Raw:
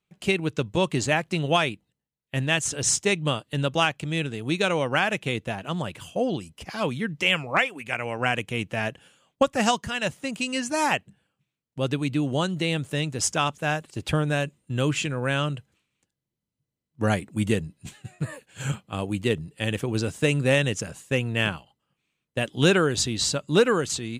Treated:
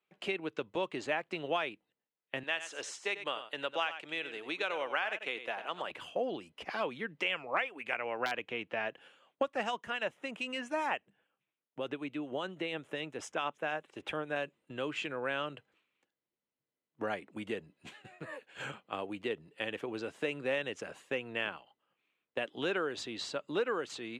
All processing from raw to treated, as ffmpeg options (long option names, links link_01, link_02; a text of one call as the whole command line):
ffmpeg -i in.wav -filter_complex "[0:a]asettb=1/sr,asplit=3[link_01][link_02][link_03];[link_01]atrim=end=2.434[link_04];[link_02]atrim=start=2.43:end=5.91,asetpts=PTS-STARTPTS,afade=type=in:duration=0.004:curve=qsin,afade=type=out:start_time=3.476:duration=0.004:curve=qsin,highpass=frequency=770:poles=1,aecho=1:1:94:0.237,atrim=end_sample=153468[link_05];[link_03]atrim=start=5.906[link_06];[link_04][link_05]acrossfade=duration=0.004:curve1=hsin:curve2=qsin[link_07];[link_07][link_06]acrossfade=duration=0.004:curve1=qsin:curve2=hsin,asettb=1/sr,asplit=3[link_08][link_09][link_10];[link_08]atrim=end=7.984[link_11];[link_09]atrim=start=7.98:end=8.89,asetpts=PTS-STARTPTS,afade=type=in:duration=0.004:curve=qsin,afade=type=out:start_time=0.906:duration=0.004:curve=qsin,lowpass=5300,aeval=exprs='(mod(3.16*val(0)+1,2)-1)/3.16':channel_layout=same[link_12];[link_10]atrim=start=8.886[link_13];[link_11][link_12]acrossfade=duration=0.004:curve1=hsin:curve2=qsin[link_14];[link_14][link_13]acrossfade=duration=0.004:curve1=qsin:curve2=hsin,asettb=1/sr,asplit=3[link_15][link_16][link_17];[link_15]atrim=end=9.634[link_18];[link_16]atrim=start=9.63:end=14.36,asetpts=PTS-STARTPTS,afade=type=in:duration=0.004:curve=qsin,afade=type=out:start_time=4.726:duration=0.004:curve=qsin,equalizer=frequency=4500:width=5.1:gain=-10.5,acrossover=split=2500[link_19][link_20];[link_19]aeval=exprs='val(0)*(1-0.5/2+0.5/2*cos(2*PI*7*n/s))':channel_layout=same[link_21];[link_20]aeval=exprs='val(0)*(1-0.5/2-0.5/2*cos(2*PI*7*n/s))':channel_layout=same[link_22];[link_21][link_22]amix=inputs=2:normalize=0[link_23];[link_17]atrim=start=14.356[link_24];[link_18][link_23]acrossfade=duration=0.004:curve1=hsin:curve2=qsin[link_25];[link_25][link_24]acrossfade=duration=0.004:curve1=qsin:curve2=hsin,acompressor=threshold=-32dB:ratio=2.5,acrossover=split=290 3600:gain=0.0794 1 0.126[link_26][link_27][link_28];[link_26][link_27][link_28]amix=inputs=3:normalize=0" out.wav